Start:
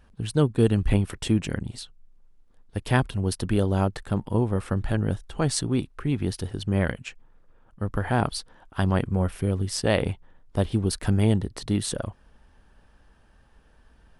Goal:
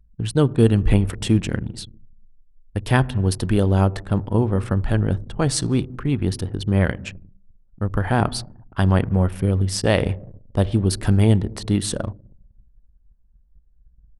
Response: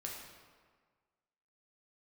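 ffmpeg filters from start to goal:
-filter_complex "[0:a]asplit=2[s0][s1];[1:a]atrim=start_sample=2205,lowshelf=f=270:g=11[s2];[s1][s2]afir=irnorm=-1:irlink=0,volume=0.168[s3];[s0][s3]amix=inputs=2:normalize=0,anlmdn=0.251,volume=1.41"

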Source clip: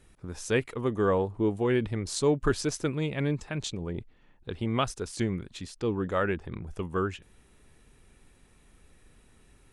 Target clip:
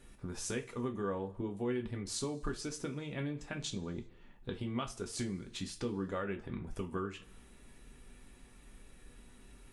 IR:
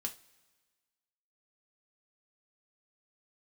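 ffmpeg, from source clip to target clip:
-filter_complex "[0:a]acompressor=threshold=0.0141:ratio=5[s0];[1:a]atrim=start_sample=2205,afade=t=out:st=0.45:d=0.01,atrim=end_sample=20286[s1];[s0][s1]afir=irnorm=-1:irlink=0,volume=1.26"

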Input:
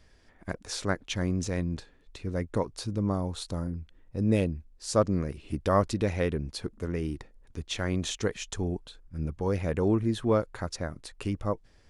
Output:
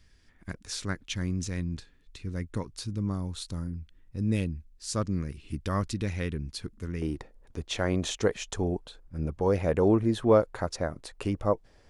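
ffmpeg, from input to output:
-af "asetnsamples=n=441:p=0,asendcmd='7.02 equalizer g 6',equalizer=f=630:t=o:w=1.7:g=-11.5"

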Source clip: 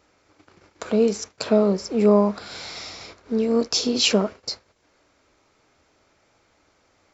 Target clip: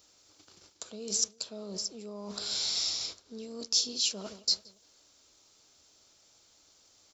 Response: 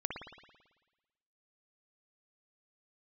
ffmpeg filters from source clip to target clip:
-filter_complex "[0:a]asplit=2[s0][s1];[s1]adelay=173,lowpass=f=1400:p=1,volume=0.0794,asplit=2[s2][s3];[s3]adelay=173,lowpass=f=1400:p=1,volume=0.47,asplit=2[s4][s5];[s5]adelay=173,lowpass=f=1400:p=1,volume=0.47[s6];[s0][s2][s4][s6]amix=inputs=4:normalize=0,areverse,acompressor=threshold=0.0316:ratio=10,areverse,aexciter=amount=9:drive=1.1:freq=3100,volume=0.355"

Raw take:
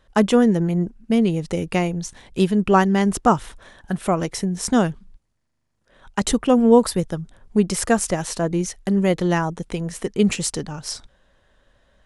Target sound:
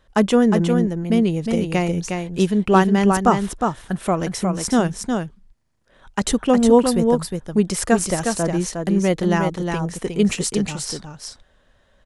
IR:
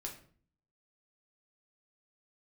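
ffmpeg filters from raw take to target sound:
-af "aecho=1:1:360:0.562"

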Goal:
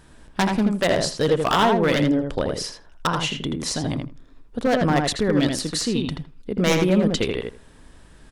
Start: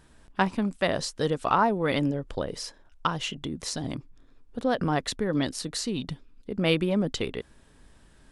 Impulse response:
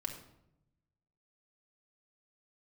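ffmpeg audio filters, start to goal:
-filter_complex "[0:a]aeval=exprs='0.126*(abs(mod(val(0)/0.126+3,4)-2)-1)':c=same,asplit=2[s0][s1];[s1]adelay=81,lowpass=f=2900:p=1,volume=0.668,asplit=2[s2][s3];[s3]adelay=81,lowpass=f=2900:p=1,volume=0.15,asplit=2[s4][s5];[s5]adelay=81,lowpass=f=2900:p=1,volume=0.15[s6];[s0][s2][s4][s6]amix=inputs=4:normalize=0,volume=2"

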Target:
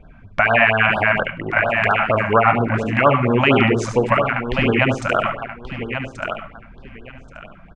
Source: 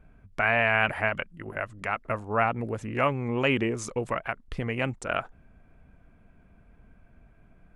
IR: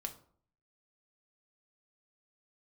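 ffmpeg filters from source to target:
-filter_complex "[0:a]lowpass=3800,lowshelf=f=350:g=-5,aecho=1:1:1131|2262|3393:0.335|0.067|0.0134,asplit=2[s0][s1];[1:a]atrim=start_sample=2205,adelay=72[s2];[s1][s2]afir=irnorm=-1:irlink=0,volume=0.596[s3];[s0][s3]amix=inputs=2:normalize=0,alimiter=level_in=5.96:limit=0.891:release=50:level=0:latency=1,afftfilt=real='re*(1-between(b*sr/1024,360*pow(2400/360,0.5+0.5*sin(2*PI*4.3*pts/sr))/1.41,360*pow(2400/360,0.5+0.5*sin(2*PI*4.3*pts/sr))*1.41))':imag='im*(1-between(b*sr/1024,360*pow(2400/360,0.5+0.5*sin(2*PI*4.3*pts/sr))/1.41,360*pow(2400/360,0.5+0.5*sin(2*PI*4.3*pts/sr))*1.41))':win_size=1024:overlap=0.75,volume=0.891"

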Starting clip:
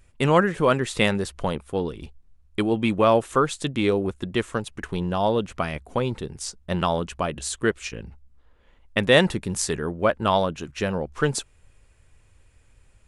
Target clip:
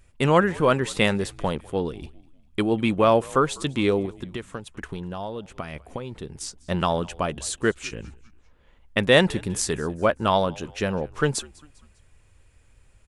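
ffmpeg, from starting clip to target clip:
-filter_complex "[0:a]asettb=1/sr,asplit=3[s0][s1][s2];[s0]atrim=end=4.054[s3];[s1]atrim=start=4.05:end=6.62,asetpts=PTS-STARTPTS,afade=t=in:d=0.004:c=qsin,afade=t=out:st=2.566:d=0.004:c=qsin,acompressor=threshold=0.0316:ratio=6[s4];[s2]atrim=start=6.616[s5];[s3][s4]acrossfade=d=0.004:c1=hsin:c2=qsin[s6];[s6][s5]acrossfade=d=0.004:c1=qsin:c2=hsin,asplit=4[s7][s8][s9][s10];[s8]adelay=199,afreqshift=-74,volume=0.0668[s11];[s9]adelay=398,afreqshift=-148,volume=0.0302[s12];[s10]adelay=597,afreqshift=-222,volume=0.0135[s13];[s7][s11][s12][s13]amix=inputs=4:normalize=0"

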